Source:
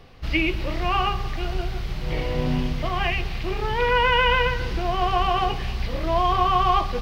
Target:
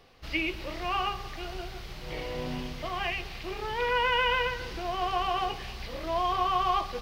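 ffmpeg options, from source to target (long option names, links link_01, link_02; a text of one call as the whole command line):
ffmpeg -i in.wav -af "bass=frequency=250:gain=-8,treble=frequency=4000:gain=4,volume=-6.5dB" out.wav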